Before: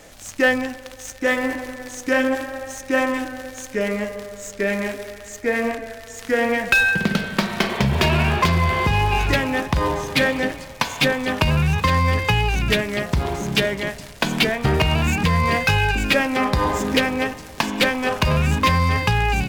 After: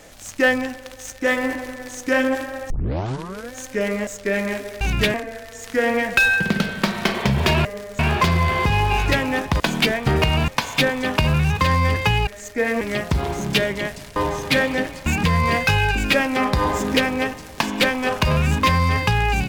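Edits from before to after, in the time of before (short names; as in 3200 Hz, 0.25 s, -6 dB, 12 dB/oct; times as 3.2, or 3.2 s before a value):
2.7 tape start 0.83 s
4.07–4.41 move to 8.2
5.15–5.69 swap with 12.5–12.83
9.81–10.71 swap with 14.18–15.06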